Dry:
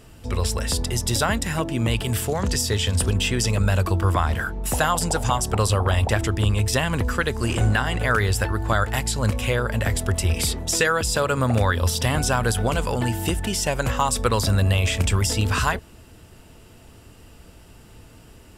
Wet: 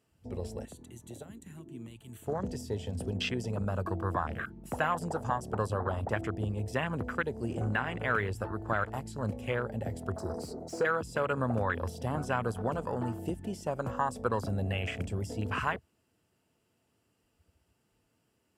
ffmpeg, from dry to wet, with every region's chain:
-filter_complex "[0:a]asettb=1/sr,asplit=3[a][b][c];[a]atrim=end=0.654[d];[b]atrim=start=0.65:end=2.27,asetpts=PTS-STARTPTS,afade=t=in:d=0.004:c=qsin,afade=t=out:st=1.616:d=0.004:c=qsin,acrossover=split=310|4200[e][f][g];[e]acompressor=threshold=-37dB:ratio=4[h];[f]acompressor=threshold=-34dB:ratio=4[i];[g]acompressor=threshold=-27dB:ratio=4[j];[h][i][j]amix=inputs=3:normalize=0,asuperstop=centerf=5100:order=4:qfactor=3.5[k];[c]atrim=start=2.266[l];[d][k]acrossfade=d=0.004:c1=hsin:c2=qsin[m];[m][l]acrossfade=d=0.004:c1=qsin:c2=hsin,asettb=1/sr,asplit=3[n][o][p];[n]atrim=end=10.164[q];[o]atrim=start=10.16:end=10.85,asetpts=PTS-STARTPTS,afade=t=in:d=0.004:c=qsin,afade=t=out:st=0.686:d=0.004:c=qsin,asuperstop=centerf=2500:order=20:qfactor=1,asplit=2[r][s];[s]highpass=f=720:p=1,volume=15dB,asoftclip=type=tanh:threshold=-10dB[t];[r][t]amix=inputs=2:normalize=0,lowpass=f=3.4k:p=1,volume=-6dB[u];[p]atrim=start=10.846[v];[q][u]acrossfade=d=0.004:c1=hsin:c2=qsin[w];[w][v]acrossfade=d=0.004:c1=qsin:c2=hsin,afwtdn=0.0501,highpass=130,bandreject=f=3.7k:w=17,volume=-8dB"

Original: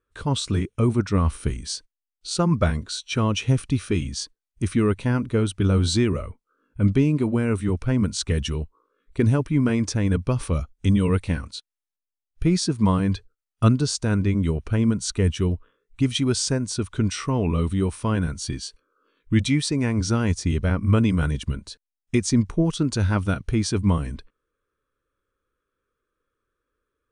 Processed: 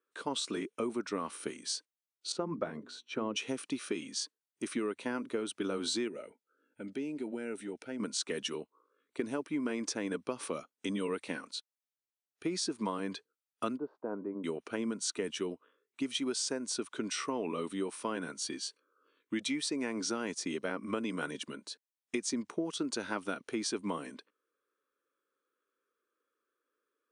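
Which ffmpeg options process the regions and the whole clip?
-filter_complex "[0:a]asettb=1/sr,asplit=3[a][b][c];[a]atrim=end=2.324[d];[b]atrim=start=2.32:end=3.36,asetpts=PTS-STARTPTS,afade=t=in:d=0.004:c=qsin,afade=t=out:st=1.036:d=0.004:c=qsin,lowpass=f=1k:p=1,lowshelf=f=170:g=7.5,bandreject=f=60:t=h:w=6,bandreject=f=120:t=h:w=6,bandreject=f=180:t=h:w=6,bandreject=f=240:t=h:w=6,bandreject=f=300:t=h:w=6,bandreject=f=360:t=h:w=6,bandreject=f=420:t=h:w=6[e];[c]atrim=start=3.356[f];[d][e]acrossfade=d=0.004:c1=hsin:c2=qsin[g];[g][f]acrossfade=d=0.004:c1=qsin:c2=hsin,asettb=1/sr,asplit=3[h][i][j];[h]atrim=end=6.084[k];[i]atrim=start=6.08:end=8,asetpts=PTS-STARTPTS,afade=t=in:d=0.004:c=qsin,afade=t=out:st=1.916:d=0.004:c=qsin,asuperstop=centerf=1100:order=4:qfactor=2.9,acompressor=threshold=-31dB:ratio=2:attack=3.2:release=140:knee=1:detection=peak[l];[j]atrim=start=7.996[m];[k][l]acrossfade=d=0.004:c1=hsin:c2=qsin[n];[n][m]acrossfade=d=0.004:c1=qsin:c2=hsin,asettb=1/sr,asplit=3[o][p][q];[o]atrim=end=13.774[r];[p]atrim=start=13.77:end=14.44,asetpts=PTS-STARTPTS,afade=t=in:d=0.004:c=qsin,afade=t=out:st=0.666:d=0.004:c=qsin,lowpass=f=1k:w=0.5412,lowpass=f=1k:w=1.3066,lowshelf=f=250:g=-11[s];[q]atrim=start=14.436[t];[r][s]acrossfade=d=0.004:c1=hsin:c2=qsin[u];[u][t]acrossfade=d=0.004:c1=qsin:c2=hsin,highpass=f=270:w=0.5412,highpass=f=270:w=1.3066,acompressor=threshold=-26dB:ratio=6,volume=-4.5dB"

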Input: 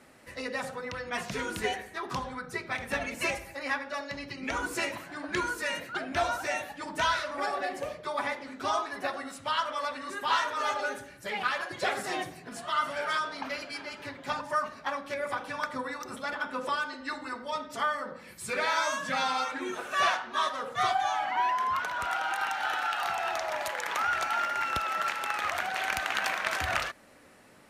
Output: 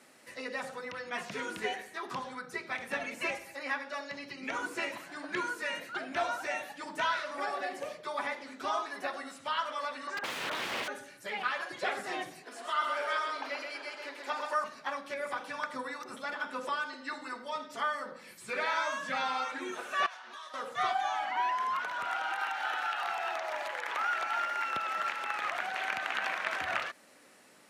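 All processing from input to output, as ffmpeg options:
-filter_complex "[0:a]asettb=1/sr,asplit=3[a][b][c];[a]atrim=end=10.074[d];[b]atrim=start=10.07:end=10.88,asetpts=PTS-STARTPTS,afade=t=in:d=0.004:c=qsin,afade=t=out:st=0.806:d=0.004:c=qsin,highpass=270,equalizer=f=320:t=q:w=4:g=-10,equalizer=f=610:t=q:w=4:g=6,equalizer=f=870:t=q:w=4:g=10,equalizer=f=1.5k:t=q:w=4:g=9,equalizer=f=4k:t=q:w=4:g=-5,lowpass=f=6.4k:w=0.5412,lowpass=f=6.4k:w=1.3066,aeval=exprs='(mod(16.8*val(0)+1,2)-1)/16.8':c=same[e];[c]atrim=start=10.876[f];[d][e]acrossfade=d=0.004:c1=hsin:c2=qsin[g];[g][f]acrossfade=d=0.004:c1=qsin:c2=hsin,asettb=1/sr,asplit=3[h][i][j];[h]atrim=end=12.434[k];[i]atrim=start=12.43:end=14.64,asetpts=PTS-STARTPTS,afade=t=in:d=0.004:c=qsin,afade=t=out:st=2.206:d=0.004:c=qsin,highpass=f=330:w=0.5412,highpass=f=330:w=1.3066,lowshelf=f=420:g=4.5,aecho=1:1:129:0.562,atrim=end_sample=97461[l];[j]atrim=start=14.636[m];[k][l]acrossfade=d=0.004:c1=hsin:c2=qsin[n];[n][m]acrossfade=d=0.004:c1=qsin:c2=hsin,asettb=1/sr,asplit=3[o][p][q];[o]atrim=end=20.064[r];[p]atrim=start=20.06:end=20.54,asetpts=PTS-STARTPTS,afade=t=in:d=0.004:c=qsin,afade=t=out:st=0.476:d=0.004:c=qsin,highpass=f=610:p=1,acompressor=threshold=-41dB:ratio=6:attack=3.2:release=140:knee=1:detection=peak[s];[q]atrim=start=20.536[t];[r][s]acrossfade=d=0.004:c1=hsin:c2=qsin[u];[u][t]acrossfade=d=0.004:c1=qsin:c2=hsin,asettb=1/sr,asplit=3[v][w][x];[v]atrim=end=22.394[y];[w]atrim=start=22.39:end=24.76,asetpts=PTS-STARTPTS,afade=t=in:d=0.004:c=qsin,afade=t=out:st=2.366:d=0.004:c=qsin,acrusher=bits=9:mode=log:mix=0:aa=0.000001,highpass=250[z];[x]atrim=start=24.756[aa];[y][z]acrossfade=d=0.004:c1=hsin:c2=qsin[ab];[ab][aa]acrossfade=d=0.004:c1=qsin:c2=hsin,acrossover=split=3100[ac][ad];[ad]acompressor=threshold=-52dB:ratio=4:attack=1:release=60[ae];[ac][ae]amix=inputs=2:normalize=0,highpass=190,equalizer=f=7.1k:t=o:w=2.6:g=6.5,volume=-4dB"

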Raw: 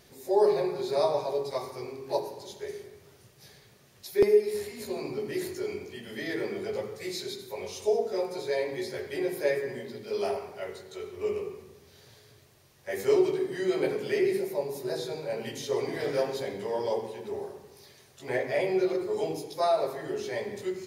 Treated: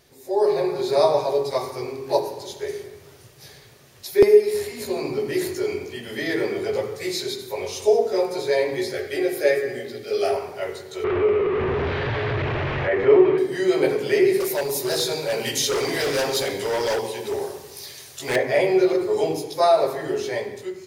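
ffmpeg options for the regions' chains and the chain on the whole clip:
-filter_complex "[0:a]asettb=1/sr,asplit=3[a][b][c];[a]atrim=end=8.934[d];[b]atrim=start=8.93:end=10.32,asetpts=PTS-STARTPTS,afade=t=in:d=0.004:c=qsin,afade=t=out:st=1.386:d=0.004:c=qsin,asuperstop=centerf=960:order=12:qfactor=3.9,equalizer=f=170:t=o:w=1:g=-7.5[e];[c]atrim=start=10.316[f];[d][e]acrossfade=d=0.004:c1=hsin:c2=qsin[g];[g][f]acrossfade=d=0.004:c1=qsin:c2=hsin,asettb=1/sr,asplit=3[h][i][j];[h]atrim=end=11.044[k];[i]atrim=start=11.04:end=13.38,asetpts=PTS-STARTPTS,afade=t=in:d=0.004:c=qsin,afade=t=out:st=2.336:d=0.004:c=qsin,aeval=exprs='val(0)+0.5*0.0251*sgn(val(0))':c=same,lowpass=f=2.5k:w=0.5412,lowpass=f=2.5k:w=1.3066,acompressor=mode=upward:threshold=-25dB:ratio=2.5:attack=3.2:release=140:knee=2.83:detection=peak[l];[j]atrim=start=13.376[m];[k][l]acrossfade=d=0.004:c1=hsin:c2=qsin[n];[n][m]acrossfade=d=0.004:c1=qsin:c2=hsin,asettb=1/sr,asplit=3[o][p][q];[o]atrim=end=14.404[r];[p]atrim=start=14.4:end=18.36,asetpts=PTS-STARTPTS,afade=t=in:d=0.004:c=qsin,afade=t=out:st=3.956:d=0.004:c=qsin,volume=29dB,asoftclip=hard,volume=-29dB,highshelf=f=2.4k:g=11[s];[q]atrim=start=18.356[t];[r][s]acrossfade=d=0.004:c1=hsin:c2=qsin[u];[u][t]acrossfade=d=0.004:c1=qsin:c2=hsin,equalizer=f=200:t=o:w=0.27:g=-8.5,dynaudnorm=f=100:g=11:m=8.5dB"

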